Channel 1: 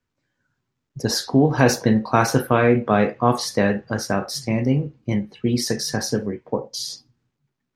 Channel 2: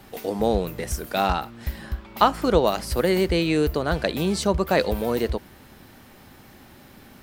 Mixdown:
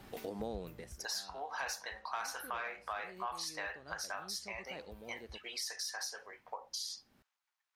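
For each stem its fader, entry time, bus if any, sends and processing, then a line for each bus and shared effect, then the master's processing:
-3.0 dB, 0.00 s, no send, HPF 820 Hz 24 dB/oct; soft clip -12.5 dBFS, distortion -17 dB
-6.5 dB, 0.00 s, no send, high shelf 11000 Hz -6 dB; auto duck -19 dB, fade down 0.30 s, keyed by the first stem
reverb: off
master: compressor 3:1, threshold -41 dBFS, peak gain reduction 14.5 dB

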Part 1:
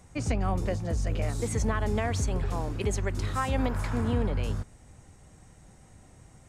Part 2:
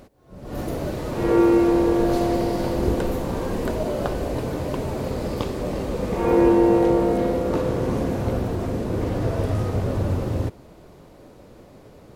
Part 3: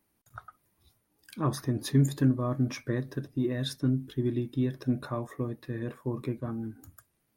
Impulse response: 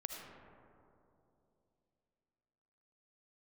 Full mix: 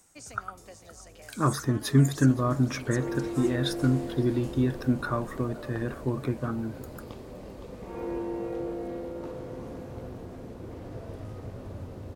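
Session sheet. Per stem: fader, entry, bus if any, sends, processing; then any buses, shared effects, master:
-9.0 dB, 0.00 s, send -15 dB, echo send -18.5 dB, tone controls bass -12 dB, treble +13 dB; auto duck -9 dB, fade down 0.30 s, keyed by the third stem
-17.0 dB, 1.70 s, no send, echo send -8 dB, dry
+3.0 dB, 0.00 s, no send, echo send -22 dB, bell 1400 Hz +10.5 dB 0.4 oct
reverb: on, RT60 2.9 s, pre-delay 35 ms
echo: echo 0.516 s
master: dry

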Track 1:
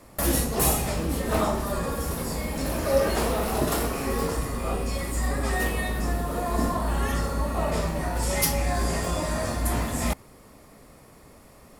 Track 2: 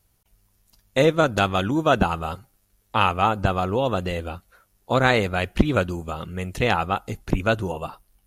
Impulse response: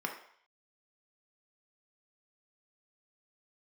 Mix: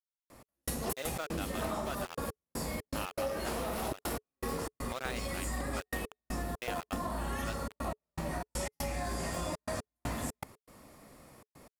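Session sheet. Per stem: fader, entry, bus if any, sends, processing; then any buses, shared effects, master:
-4.0 dB, 0.30 s, no send, step gate "x..xx.x.xxxxxx." 120 bpm -60 dB
-13.5 dB, 0.00 s, no send, HPF 530 Hz 12 dB/oct; bell 910 Hz -3 dB 1.2 oct; sample gate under -22 dBFS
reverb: off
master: low shelf 67 Hz -7.5 dB; notch 430 Hz, Q 14; compressor 6:1, threshold -32 dBFS, peak gain reduction 11.5 dB

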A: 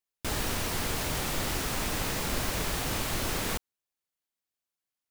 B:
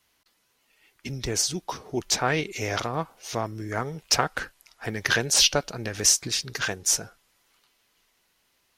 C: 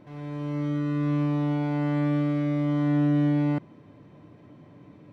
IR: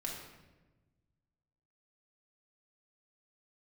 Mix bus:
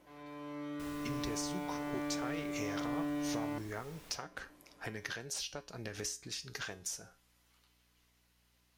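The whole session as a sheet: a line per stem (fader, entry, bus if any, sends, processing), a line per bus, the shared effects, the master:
-9.0 dB, 0.55 s, no send, auto duck -11 dB, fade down 1.80 s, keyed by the second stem
0.0 dB, 0.00 s, no send, compressor 10:1, threshold -32 dBFS, peak gain reduction 17.5 dB
-0.5 dB, 0.00 s, no send, Bessel high-pass 500 Hz, order 2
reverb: off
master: resonator 60 Hz, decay 0.35 s, harmonics odd, mix 60%; hum 60 Hz, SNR 34 dB

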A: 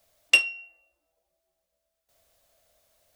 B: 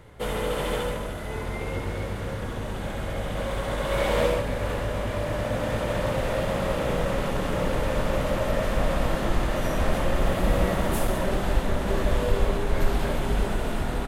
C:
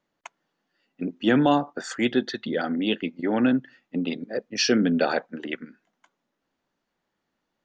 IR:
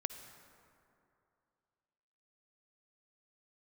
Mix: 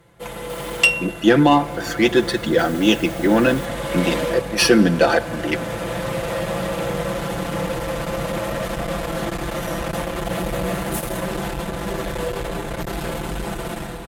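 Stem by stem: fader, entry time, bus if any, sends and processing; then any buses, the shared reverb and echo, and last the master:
-1.0 dB, 0.50 s, no send, upward compressor, threshold -30 dBFS
-4.0 dB, 0.00 s, no send, high shelf 6300 Hz +6 dB; tube stage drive 23 dB, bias 0.35
-2.0 dB, 0.00 s, send -5.5 dB, running maximum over 3 samples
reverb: on, RT60 2.7 s, pre-delay 47 ms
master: HPF 56 Hz 12 dB/oct; comb 5.9 ms, depth 72%; AGC gain up to 7.5 dB

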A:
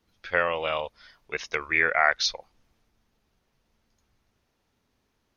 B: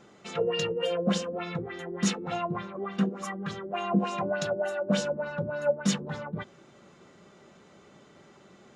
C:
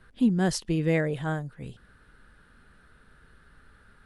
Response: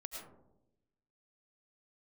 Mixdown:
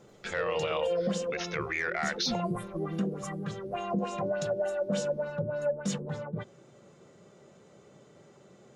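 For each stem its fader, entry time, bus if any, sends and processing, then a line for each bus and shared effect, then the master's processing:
+1.0 dB, 0.00 s, no send, dry
-7.0 dB, 0.00 s, no send, graphic EQ 125/500/8000 Hz +10/+9/+8 dB
-10.5 dB, 2.05 s, no send, inverse Chebyshev band-stop 890–4900 Hz, stop band 50 dB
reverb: off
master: soft clip -10 dBFS, distortion -19 dB; limiter -21.5 dBFS, peak gain reduction 10.5 dB

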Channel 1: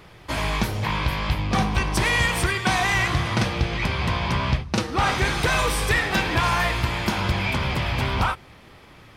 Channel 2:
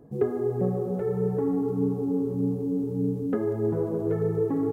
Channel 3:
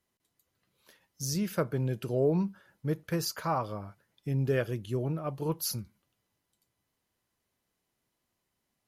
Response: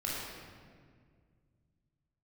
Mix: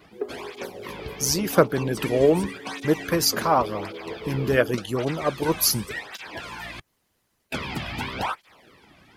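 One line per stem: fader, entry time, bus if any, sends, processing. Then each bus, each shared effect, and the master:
+2.0 dB, 0.00 s, muted 6.8–7.52, no send, notch 1200 Hz, Q 24; tape flanging out of phase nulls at 0.89 Hz, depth 2.3 ms; auto duck -8 dB, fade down 0.35 s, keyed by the third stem
0.0 dB, 0.00 s, no send, HPF 270 Hz 24 dB/oct
+2.0 dB, 0.00 s, no send, AGC gain up to 12 dB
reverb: off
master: harmonic-percussive split harmonic -13 dB

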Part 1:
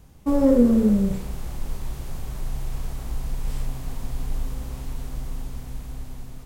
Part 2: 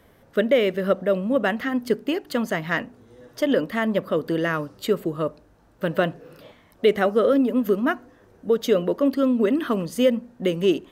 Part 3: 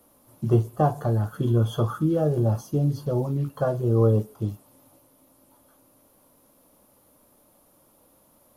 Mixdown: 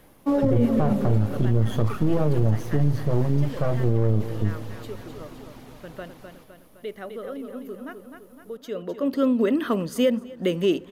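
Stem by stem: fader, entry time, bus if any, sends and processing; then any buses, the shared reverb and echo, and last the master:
+1.5 dB, 0.00 s, no send, echo send -10.5 dB, reverb removal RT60 0.67 s; three-band isolator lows -21 dB, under 190 Hz, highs -16 dB, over 5500 Hz
-0.5 dB, 0.00 s, no send, echo send -23 dB, auto duck -16 dB, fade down 0.40 s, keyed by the third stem
+1.5 dB, 0.00 s, no send, echo send -18.5 dB, half-wave gain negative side -12 dB; low shelf 280 Hz +8.5 dB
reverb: off
echo: feedback echo 0.256 s, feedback 53%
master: limiter -11.5 dBFS, peak gain reduction 11 dB

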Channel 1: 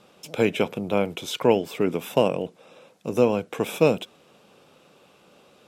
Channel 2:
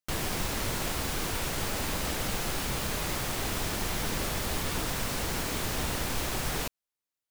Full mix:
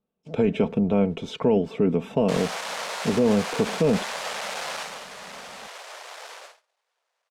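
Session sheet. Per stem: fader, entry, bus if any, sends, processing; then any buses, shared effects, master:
-1.5 dB, 0.00 s, no send, tilt -3.5 dB/oct; comb 4.5 ms, depth 50%
4.77 s 0 dB -> 5.06 s -9 dB -> 6.32 s -9 dB -> 6.65 s -15.5 dB, 2.20 s, no send, half-waves squared off; steep high-pass 520 Hz 36 dB/oct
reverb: off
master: LPF 7600 Hz 12 dB/oct; gate -42 dBFS, range -31 dB; limiter -11.5 dBFS, peak gain reduction 9.5 dB

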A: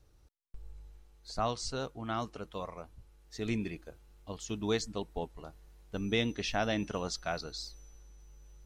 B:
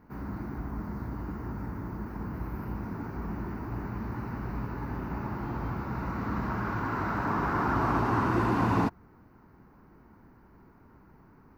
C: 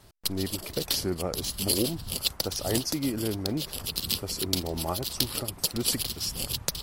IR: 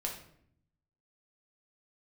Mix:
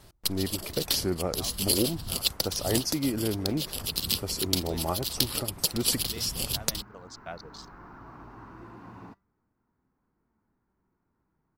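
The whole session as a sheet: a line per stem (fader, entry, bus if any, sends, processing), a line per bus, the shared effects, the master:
-1.0 dB, 0.00 s, no send, Wiener smoothing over 15 samples; reverb removal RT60 0.94 s; auto duck -12 dB, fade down 0.40 s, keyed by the third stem
-16.0 dB, 0.25 s, no send, flange 0.31 Hz, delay 3.8 ms, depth 2.7 ms, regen +87%
+1.0 dB, 0.00 s, no send, dry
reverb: off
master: dry

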